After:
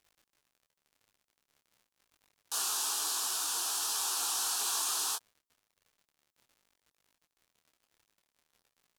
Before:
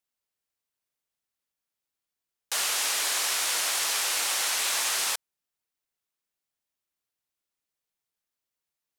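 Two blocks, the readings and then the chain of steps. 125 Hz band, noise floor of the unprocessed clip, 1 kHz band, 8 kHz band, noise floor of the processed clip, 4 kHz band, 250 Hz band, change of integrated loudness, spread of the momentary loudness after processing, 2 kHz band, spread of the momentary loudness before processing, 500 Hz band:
n/a, under -85 dBFS, -5.0 dB, -4.5 dB, under -85 dBFS, -7.0 dB, -4.5 dB, -5.5 dB, 4 LU, -14.0 dB, 4 LU, -10.5 dB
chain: fixed phaser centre 560 Hz, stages 6; crackle 63/s -47 dBFS; detuned doubles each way 15 cents

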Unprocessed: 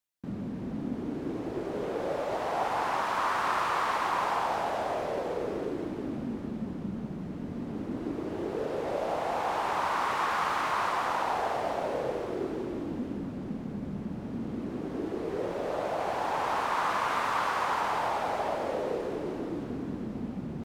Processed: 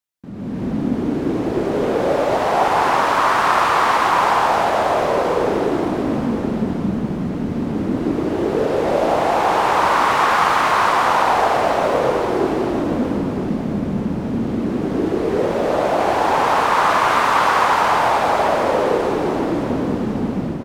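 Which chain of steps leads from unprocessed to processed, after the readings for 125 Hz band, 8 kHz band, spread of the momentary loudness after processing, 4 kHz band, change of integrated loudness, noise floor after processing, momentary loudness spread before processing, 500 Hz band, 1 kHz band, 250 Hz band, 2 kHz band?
+14.0 dB, +13.5 dB, 7 LU, +13.5 dB, +14.0 dB, -24 dBFS, 8 LU, +14.0 dB, +13.5 dB, +14.0 dB, +13.5 dB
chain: AGC gain up to 14 dB; on a send: feedback echo 0.967 s, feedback 28%, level -10.5 dB

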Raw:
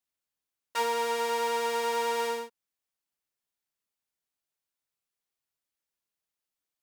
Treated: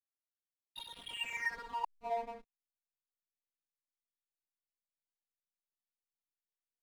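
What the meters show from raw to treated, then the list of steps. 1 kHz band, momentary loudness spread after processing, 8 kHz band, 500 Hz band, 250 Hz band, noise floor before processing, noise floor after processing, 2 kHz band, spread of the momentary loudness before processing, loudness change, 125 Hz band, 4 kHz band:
-12.0 dB, 13 LU, -17.5 dB, -15.5 dB, -15.0 dB, under -85 dBFS, under -85 dBFS, -5.0 dB, 8 LU, -10.5 dB, n/a, -8.5 dB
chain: notches 60/120/180/240/300/360/420/480/540 Hz; wah 0.32 Hz 630–3800 Hz, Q 17; flange 0.53 Hz, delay 6.2 ms, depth 8 ms, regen -25%; loudest bins only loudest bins 16; flipped gate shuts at -38 dBFS, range -30 dB; fixed phaser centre 1300 Hz, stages 6; backlash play -54 dBFS; gain +17 dB

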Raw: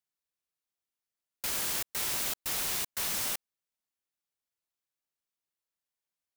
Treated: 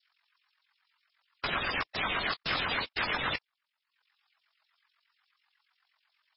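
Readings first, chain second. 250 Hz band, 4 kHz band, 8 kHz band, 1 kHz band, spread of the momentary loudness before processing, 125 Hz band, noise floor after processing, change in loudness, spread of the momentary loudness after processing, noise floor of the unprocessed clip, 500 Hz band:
+6.5 dB, +3.0 dB, under -40 dB, +9.5 dB, 4 LU, +6.5 dB, -85 dBFS, -0.5 dB, 4 LU, under -85 dBFS, +6.5 dB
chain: reverb removal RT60 0.58 s; LFO high-pass saw down 8.2 Hz 910–4900 Hz; ring modulator 22 Hz; overdrive pedal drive 32 dB, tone 1200 Hz, clips at -19.5 dBFS; gain +6.5 dB; MP3 16 kbps 22050 Hz

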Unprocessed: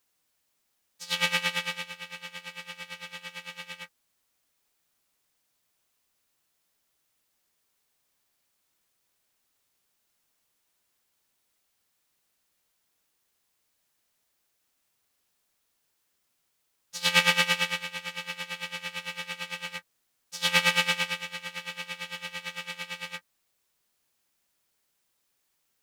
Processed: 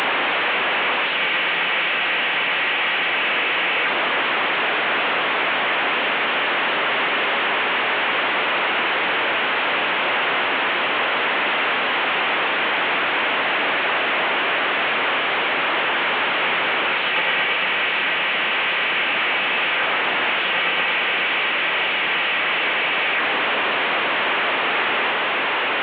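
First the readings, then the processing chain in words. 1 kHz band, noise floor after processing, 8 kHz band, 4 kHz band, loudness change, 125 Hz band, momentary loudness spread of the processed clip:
+20.0 dB, -21 dBFS, under -20 dB, +11.5 dB, +9.5 dB, +3.5 dB, 1 LU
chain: delta modulation 16 kbps, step -13.5 dBFS; HPF 340 Hz 12 dB/oct; reverse echo 0.721 s -6.5 dB

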